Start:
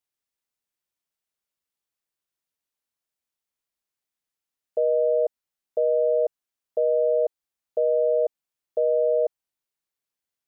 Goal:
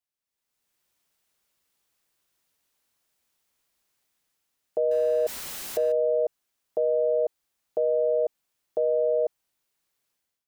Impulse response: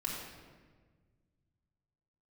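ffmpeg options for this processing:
-filter_complex "[0:a]asettb=1/sr,asplit=3[s0][s1][s2];[s0]atrim=end=4.914[s3];[s1]atrim=start=4.91:end=5.92,asetpts=PTS-STARTPTS,afade=t=in:d=0.004:c=qsin,afade=t=out:st=1.006:d=0.004:c=qsin,aeval=exprs='val(0)+0.5*0.0126*sgn(val(0))':c=same[s4];[s2]atrim=start=5.916[s5];[s3][s4]acrossfade=d=0.004:c1=hsin:c2=qsin[s6];[s6][s5]acrossfade=d=0.004:c1=qsin:c2=hsin,dynaudnorm=f=220:g=5:m=6.68,alimiter=limit=0.211:level=0:latency=1:release=28,volume=0.631"

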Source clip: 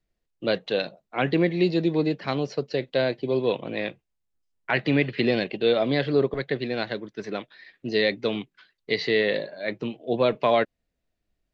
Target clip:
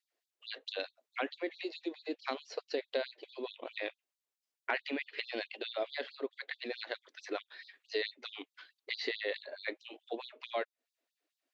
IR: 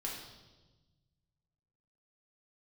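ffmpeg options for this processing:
-af "acompressor=threshold=0.0224:ratio=3,afftfilt=real='re*gte(b*sr/1024,220*pow(3500/220,0.5+0.5*sin(2*PI*4.6*pts/sr)))':imag='im*gte(b*sr/1024,220*pow(3500/220,0.5+0.5*sin(2*PI*4.6*pts/sr)))':win_size=1024:overlap=0.75"

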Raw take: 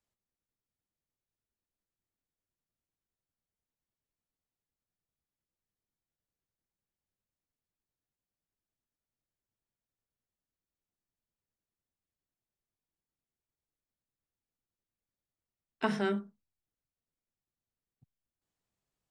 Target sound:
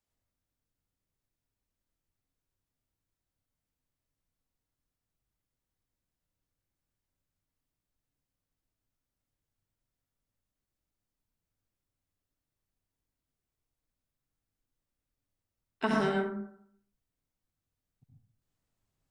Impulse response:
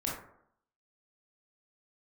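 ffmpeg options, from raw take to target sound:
-filter_complex "[0:a]asplit=2[s0][s1];[1:a]atrim=start_sample=2205,lowshelf=f=94:g=11,adelay=69[s2];[s1][s2]afir=irnorm=-1:irlink=0,volume=0.631[s3];[s0][s3]amix=inputs=2:normalize=0"

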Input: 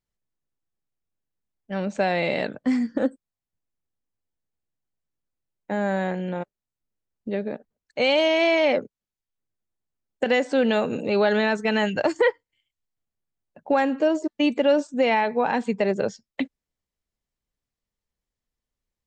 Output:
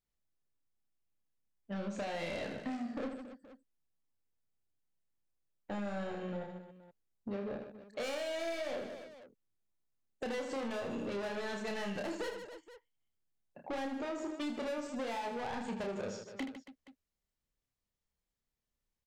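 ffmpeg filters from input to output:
-af "asoftclip=type=tanh:threshold=0.0447,aecho=1:1:30|78|154.8|277.7|474.3:0.631|0.398|0.251|0.158|0.1,acompressor=threshold=0.0316:ratio=6,volume=0.531"

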